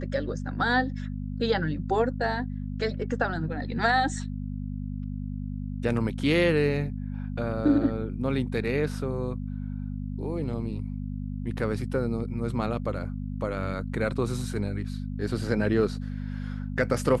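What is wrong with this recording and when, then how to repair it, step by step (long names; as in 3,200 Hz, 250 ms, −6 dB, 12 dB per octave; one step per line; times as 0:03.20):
mains hum 50 Hz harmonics 5 −33 dBFS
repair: hum removal 50 Hz, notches 5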